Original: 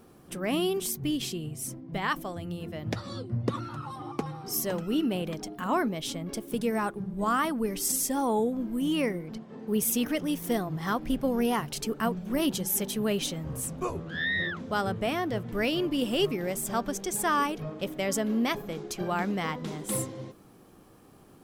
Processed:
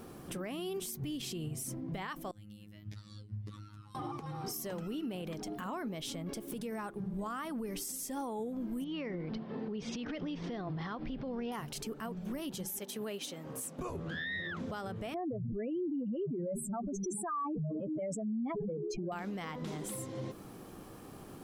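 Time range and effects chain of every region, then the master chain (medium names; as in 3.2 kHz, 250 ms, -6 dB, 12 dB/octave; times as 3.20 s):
2.31–3.95 s: amplifier tone stack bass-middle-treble 6-0-2 + robot voice 104 Hz
8.84–11.52 s: steep low-pass 4.9 kHz + compression, threshold -31 dBFS
12.79–13.79 s: high-pass 260 Hz + upward expansion, over -42 dBFS
15.14–19.12 s: spectral contrast enhancement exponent 3.3 + level flattener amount 70%
whole clip: compression 6:1, threshold -40 dBFS; peak limiter -36.5 dBFS; trim +5.5 dB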